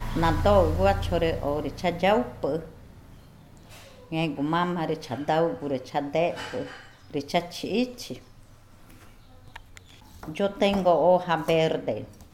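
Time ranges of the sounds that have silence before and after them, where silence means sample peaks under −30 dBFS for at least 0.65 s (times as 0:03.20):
0:04.12–0:08.13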